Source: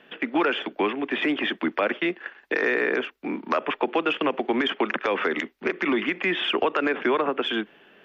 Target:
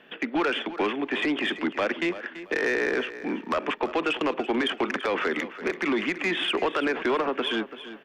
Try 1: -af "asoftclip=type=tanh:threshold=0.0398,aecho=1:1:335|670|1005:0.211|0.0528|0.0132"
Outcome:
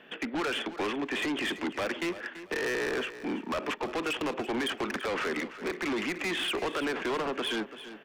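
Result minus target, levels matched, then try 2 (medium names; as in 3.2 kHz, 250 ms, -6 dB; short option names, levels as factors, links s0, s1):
saturation: distortion +9 dB
-af "asoftclip=type=tanh:threshold=0.126,aecho=1:1:335|670|1005:0.211|0.0528|0.0132"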